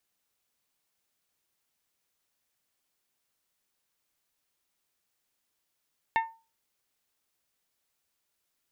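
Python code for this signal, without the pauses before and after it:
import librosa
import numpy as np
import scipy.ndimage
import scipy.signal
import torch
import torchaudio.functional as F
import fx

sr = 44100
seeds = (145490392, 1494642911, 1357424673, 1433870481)

y = fx.strike_glass(sr, length_s=0.89, level_db=-20, body='bell', hz=903.0, decay_s=0.32, tilt_db=5.0, modes=5)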